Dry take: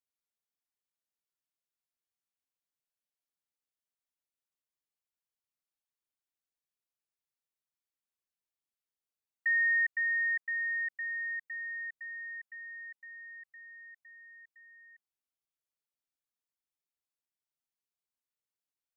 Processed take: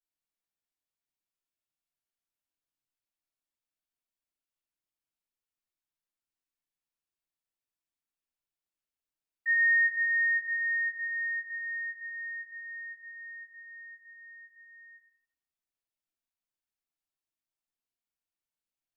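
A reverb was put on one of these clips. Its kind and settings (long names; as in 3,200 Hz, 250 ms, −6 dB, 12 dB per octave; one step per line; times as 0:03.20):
rectangular room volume 170 cubic metres, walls mixed, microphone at 3.4 metres
level −12.5 dB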